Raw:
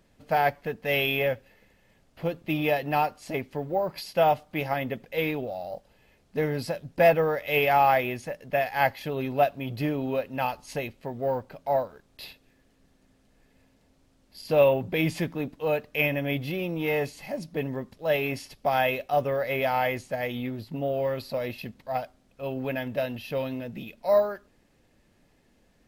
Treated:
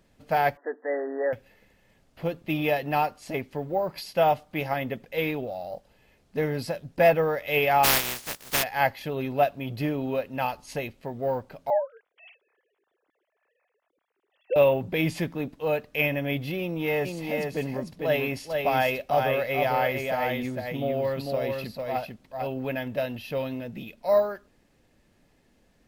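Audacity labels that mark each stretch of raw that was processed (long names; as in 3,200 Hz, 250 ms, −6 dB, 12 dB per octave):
0.570000	1.330000	linear-phase brick-wall band-pass 250–2,000 Hz
7.830000	8.620000	compressing power law on the bin magnitudes exponent 0.19
11.700000	14.560000	three sine waves on the formant tracks
16.600000	22.470000	single-tap delay 448 ms −4 dB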